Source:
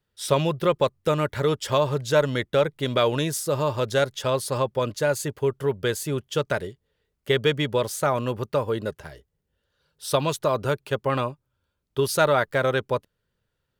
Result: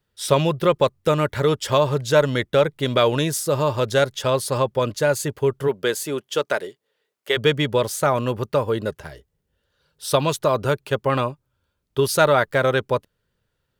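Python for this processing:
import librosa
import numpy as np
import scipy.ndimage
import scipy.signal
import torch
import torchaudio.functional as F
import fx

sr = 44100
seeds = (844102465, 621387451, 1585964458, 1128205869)

y = fx.highpass(x, sr, hz=fx.line((5.67, 210.0), (7.36, 490.0)), slope=12, at=(5.67, 7.36), fade=0.02)
y = F.gain(torch.from_numpy(y), 3.5).numpy()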